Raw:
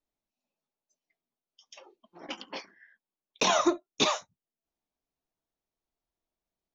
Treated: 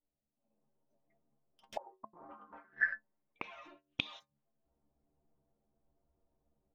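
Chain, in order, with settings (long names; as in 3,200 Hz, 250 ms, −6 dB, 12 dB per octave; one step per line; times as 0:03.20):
low-pass that shuts in the quiet parts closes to 560 Hz, open at −24 dBFS
parametric band 360 Hz −4.5 dB 0.86 octaves
automatic gain control gain up to 15 dB
brickwall limiter −13.5 dBFS, peak gain reduction 11.5 dB
downward compressor 4 to 1, threshold −38 dBFS, peak gain reduction 16 dB
leveller curve on the samples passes 3
stiff-string resonator 69 Hz, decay 0.26 s, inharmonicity 0.008
gate with flip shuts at −42 dBFS, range −34 dB
0:01.76–0:04.19: low-pass with resonance 860 Hz → 3,600 Hz, resonance Q 5.4
level +14.5 dB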